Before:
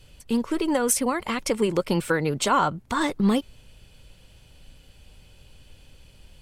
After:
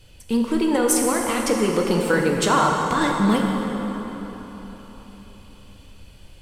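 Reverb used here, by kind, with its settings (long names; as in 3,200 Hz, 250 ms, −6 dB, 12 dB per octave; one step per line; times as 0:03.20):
dense smooth reverb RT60 4.2 s, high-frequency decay 0.6×, DRR 0 dB
level +1 dB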